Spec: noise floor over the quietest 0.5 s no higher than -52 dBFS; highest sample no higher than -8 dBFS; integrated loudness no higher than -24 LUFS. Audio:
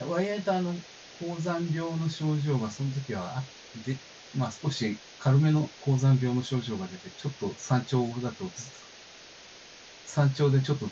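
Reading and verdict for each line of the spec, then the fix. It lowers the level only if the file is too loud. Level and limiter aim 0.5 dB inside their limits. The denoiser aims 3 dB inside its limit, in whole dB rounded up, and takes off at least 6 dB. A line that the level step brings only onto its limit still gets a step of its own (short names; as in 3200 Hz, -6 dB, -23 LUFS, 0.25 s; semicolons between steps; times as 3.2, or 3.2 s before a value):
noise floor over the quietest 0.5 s -50 dBFS: fail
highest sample -11.5 dBFS: OK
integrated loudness -29.5 LUFS: OK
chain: denoiser 6 dB, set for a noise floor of -50 dBFS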